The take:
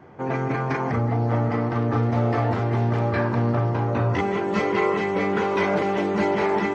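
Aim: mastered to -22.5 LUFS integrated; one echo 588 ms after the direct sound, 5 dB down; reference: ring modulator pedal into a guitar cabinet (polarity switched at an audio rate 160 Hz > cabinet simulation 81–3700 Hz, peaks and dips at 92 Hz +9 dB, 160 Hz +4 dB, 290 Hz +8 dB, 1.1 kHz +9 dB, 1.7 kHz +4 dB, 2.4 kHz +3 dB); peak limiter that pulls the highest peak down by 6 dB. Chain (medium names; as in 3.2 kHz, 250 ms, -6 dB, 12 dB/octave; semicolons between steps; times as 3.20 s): peak limiter -16.5 dBFS; delay 588 ms -5 dB; polarity switched at an audio rate 160 Hz; cabinet simulation 81–3700 Hz, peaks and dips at 92 Hz +9 dB, 160 Hz +4 dB, 290 Hz +8 dB, 1.1 kHz +9 dB, 1.7 kHz +4 dB, 2.4 kHz +3 dB; trim -2 dB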